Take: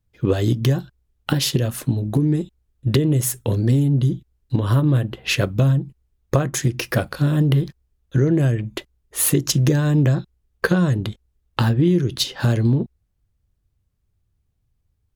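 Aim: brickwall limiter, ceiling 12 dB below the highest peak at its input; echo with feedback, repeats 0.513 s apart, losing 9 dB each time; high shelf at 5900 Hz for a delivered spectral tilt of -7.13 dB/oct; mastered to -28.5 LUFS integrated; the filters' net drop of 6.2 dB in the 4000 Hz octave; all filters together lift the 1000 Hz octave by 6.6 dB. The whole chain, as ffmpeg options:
-af "equalizer=f=1k:t=o:g=9,equalizer=f=4k:t=o:g=-6,highshelf=f=5.9k:g=-7,alimiter=limit=-11.5dB:level=0:latency=1,aecho=1:1:513|1026|1539|2052:0.355|0.124|0.0435|0.0152,volume=-6.5dB"

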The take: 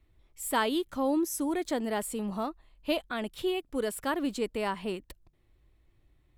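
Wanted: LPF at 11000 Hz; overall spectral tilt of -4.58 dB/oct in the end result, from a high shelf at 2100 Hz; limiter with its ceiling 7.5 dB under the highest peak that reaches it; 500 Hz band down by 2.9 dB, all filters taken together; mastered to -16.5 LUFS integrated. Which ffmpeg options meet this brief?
-af "lowpass=11k,equalizer=f=500:t=o:g=-3.5,highshelf=f=2.1k:g=-6.5,volume=19.5dB,alimiter=limit=-6.5dB:level=0:latency=1"

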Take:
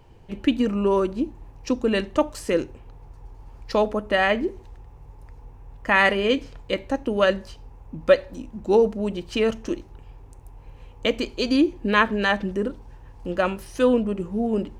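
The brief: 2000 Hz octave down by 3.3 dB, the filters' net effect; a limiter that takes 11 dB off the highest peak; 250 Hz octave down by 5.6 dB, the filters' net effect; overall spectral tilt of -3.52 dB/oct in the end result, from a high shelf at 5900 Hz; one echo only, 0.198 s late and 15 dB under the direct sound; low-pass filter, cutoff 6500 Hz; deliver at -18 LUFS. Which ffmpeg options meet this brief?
-af "lowpass=6.5k,equalizer=f=250:t=o:g=-7,equalizer=f=2k:t=o:g=-4.5,highshelf=f=5.9k:g=7.5,alimiter=limit=-16.5dB:level=0:latency=1,aecho=1:1:198:0.178,volume=11dB"

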